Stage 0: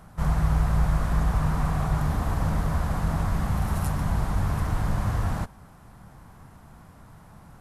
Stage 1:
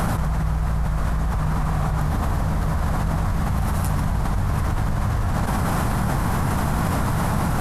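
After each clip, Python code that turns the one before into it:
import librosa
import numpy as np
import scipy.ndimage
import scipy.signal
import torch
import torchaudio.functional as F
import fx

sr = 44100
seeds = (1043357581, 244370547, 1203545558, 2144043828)

y = fx.env_flatten(x, sr, amount_pct=100)
y = F.gain(torch.from_numpy(y), -3.0).numpy()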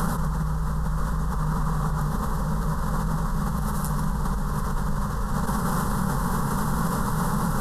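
y = fx.fixed_phaser(x, sr, hz=460.0, stages=8)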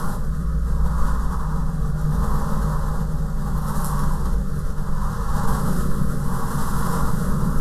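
y = x + 10.0 ** (-12.5 / 20.0) * np.pad(x, (int(276 * sr / 1000.0), 0))[:len(x)]
y = fx.room_shoebox(y, sr, seeds[0], volume_m3=60.0, walls='mixed', distance_m=0.62)
y = fx.rotary(y, sr, hz=0.7)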